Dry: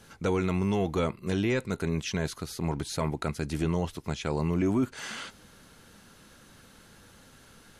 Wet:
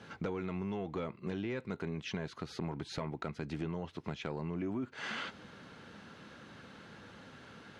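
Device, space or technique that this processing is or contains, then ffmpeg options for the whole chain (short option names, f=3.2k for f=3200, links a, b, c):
AM radio: -af "highpass=110,lowpass=3.3k,acompressor=threshold=-38dB:ratio=6,asoftclip=type=tanh:threshold=-28dB,volume=3.5dB"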